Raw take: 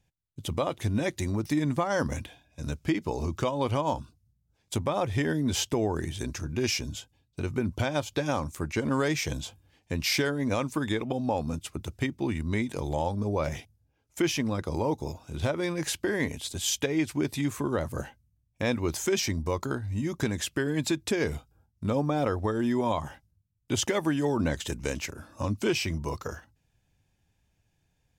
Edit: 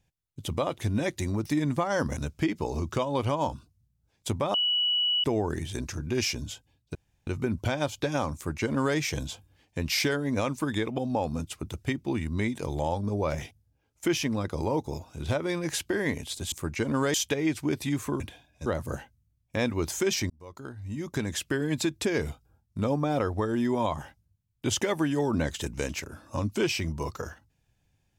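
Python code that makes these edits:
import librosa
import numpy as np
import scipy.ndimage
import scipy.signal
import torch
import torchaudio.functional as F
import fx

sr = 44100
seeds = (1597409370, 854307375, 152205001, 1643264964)

y = fx.edit(x, sr, fx.move(start_s=2.17, length_s=0.46, to_s=17.72),
    fx.bleep(start_s=5.0, length_s=0.7, hz=2940.0, db=-22.5),
    fx.insert_room_tone(at_s=7.41, length_s=0.32),
    fx.duplicate(start_s=8.49, length_s=0.62, to_s=16.66),
    fx.fade_in_span(start_s=19.36, length_s=1.11), tone=tone)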